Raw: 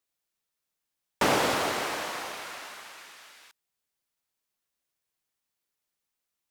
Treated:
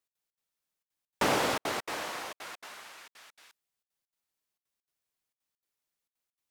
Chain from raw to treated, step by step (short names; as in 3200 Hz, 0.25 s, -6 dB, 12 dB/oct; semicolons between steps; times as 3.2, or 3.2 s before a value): step gate "x.xx.xxxxx" 200 bpm -60 dB; gain -3 dB